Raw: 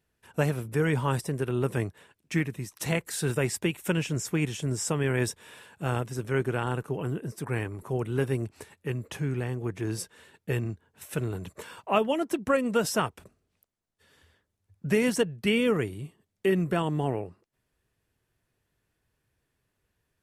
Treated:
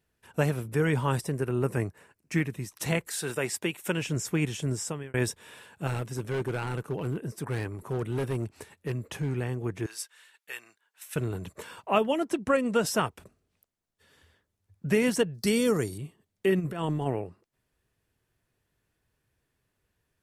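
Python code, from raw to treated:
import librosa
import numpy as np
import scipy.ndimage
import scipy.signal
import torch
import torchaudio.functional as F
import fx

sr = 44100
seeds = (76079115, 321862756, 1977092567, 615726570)

y = fx.peak_eq(x, sr, hz=3400.0, db=-12.5, octaves=0.38, at=(1.37, 2.34))
y = fx.highpass(y, sr, hz=fx.line((3.07, 540.0), (4.01, 220.0)), slope=6, at=(3.07, 4.01), fade=0.02)
y = fx.clip_hard(y, sr, threshold_db=-25.0, at=(5.87, 9.35))
y = fx.highpass(y, sr, hz=1400.0, slope=12, at=(9.86, 11.16))
y = fx.lowpass(y, sr, hz=11000.0, slope=24, at=(12.29, 12.86))
y = fx.high_shelf_res(y, sr, hz=3700.0, db=9.5, q=3.0, at=(15.34, 15.98))
y = fx.over_compress(y, sr, threshold_db=-29.0, ratio=-0.5, at=(16.59, 17.05), fade=0.02)
y = fx.edit(y, sr, fx.fade_out_span(start_s=4.7, length_s=0.44), tone=tone)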